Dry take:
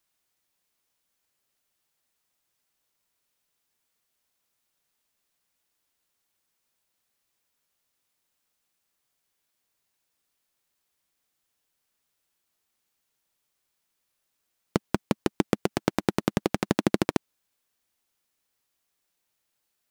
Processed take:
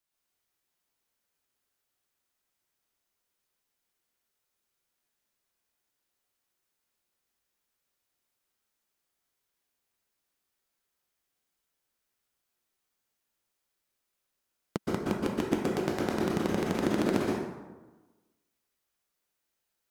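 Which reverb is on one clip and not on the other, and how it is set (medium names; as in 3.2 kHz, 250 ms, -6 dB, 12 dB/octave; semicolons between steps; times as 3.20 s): plate-style reverb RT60 1.2 s, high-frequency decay 0.55×, pre-delay 110 ms, DRR -4.5 dB; trim -8.5 dB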